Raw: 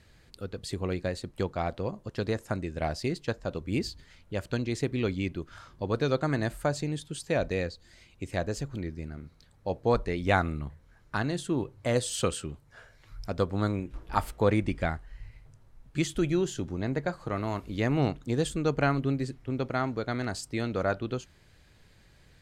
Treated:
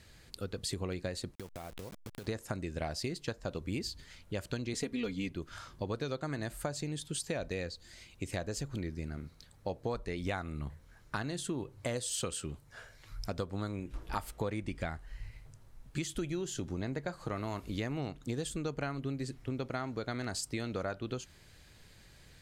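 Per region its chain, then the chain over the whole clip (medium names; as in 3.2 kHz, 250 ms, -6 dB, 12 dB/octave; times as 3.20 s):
1.35–2.27 s: send-on-delta sampling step -36.5 dBFS + compression 20:1, threshold -40 dBFS
4.73–5.30 s: comb 4.2 ms, depth 87% + hard clipper -16 dBFS
whole clip: treble shelf 3.6 kHz +7 dB; compression, threshold -33 dBFS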